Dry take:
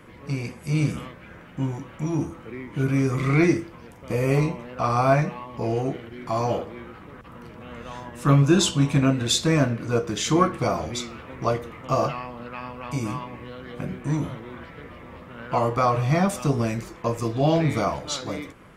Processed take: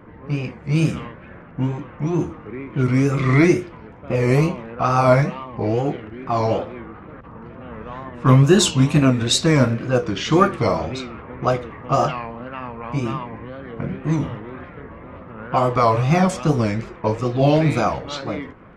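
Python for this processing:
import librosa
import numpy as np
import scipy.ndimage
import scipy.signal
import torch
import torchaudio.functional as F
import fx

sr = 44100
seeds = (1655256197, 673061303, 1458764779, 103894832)

y = fx.dmg_crackle(x, sr, seeds[0], per_s=14.0, level_db=-40.0)
y = fx.env_lowpass(y, sr, base_hz=1400.0, full_db=-15.5)
y = fx.wow_flutter(y, sr, seeds[1], rate_hz=2.1, depth_cents=130.0)
y = y * 10.0 ** (4.5 / 20.0)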